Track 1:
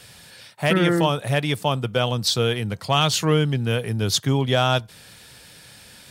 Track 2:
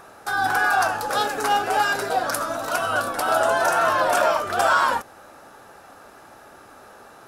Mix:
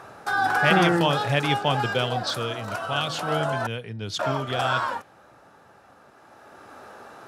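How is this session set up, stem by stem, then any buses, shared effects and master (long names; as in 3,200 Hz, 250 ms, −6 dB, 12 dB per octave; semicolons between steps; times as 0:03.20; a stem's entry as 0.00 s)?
0:01.85 −2 dB → 0:02.44 −9.5 dB, 0.00 s, no send, low-pass that shuts in the quiet parts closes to 680 Hz, open at −18 dBFS; parametric band 2,900 Hz +4 dB 1.4 octaves; hum removal 157.9 Hz, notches 12
+2.0 dB, 0.00 s, muted 0:03.67–0:04.19, no send, automatic ducking −9 dB, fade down 1.60 s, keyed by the first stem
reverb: not used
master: high-pass filter 72 Hz; high-shelf EQ 8,000 Hz −12 dB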